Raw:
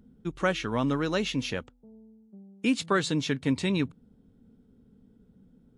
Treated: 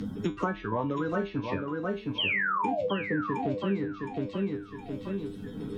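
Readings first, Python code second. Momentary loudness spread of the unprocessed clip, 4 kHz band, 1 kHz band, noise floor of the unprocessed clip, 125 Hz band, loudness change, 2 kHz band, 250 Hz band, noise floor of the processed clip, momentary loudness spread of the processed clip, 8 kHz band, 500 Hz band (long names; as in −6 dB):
8 LU, −1.5 dB, +3.5 dB, −61 dBFS, −1.5 dB, −2.5 dB, +2.0 dB, −1.5 dB, −44 dBFS, 9 LU, below −15 dB, +0.5 dB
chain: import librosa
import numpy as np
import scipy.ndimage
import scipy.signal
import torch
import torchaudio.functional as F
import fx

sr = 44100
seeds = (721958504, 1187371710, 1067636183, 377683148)

p1 = fx.spec_quant(x, sr, step_db=30)
p2 = fx.env_lowpass_down(p1, sr, base_hz=1100.0, full_db=-26.5)
p3 = fx.level_steps(p2, sr, step_db=16)
p4 = p2 + (p3 * 10.0 ** (-2.0 / 20.0))
p5 = fx.spec_paint(p4, sr, seeds[0], shape='fall', start_s=2.18, length_s=0.69, low_hz=470.0, high_hz=3300.0, level_db=-23.0)
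p6 = fx.comb_fb(p5, sr, f0_hz=100.0, decay_s=0.23, harmonics='all', damping=0.0, mix_pct=90)
p7 = fx.echo_feedback(p6, sr, ms=715, feedback_pct=20, wet_db=-8.0)
p8 = fx.band_squash(p7, sr, depth_pct=100)
y = p8 * 10.0 ** (3.0 / 20.0)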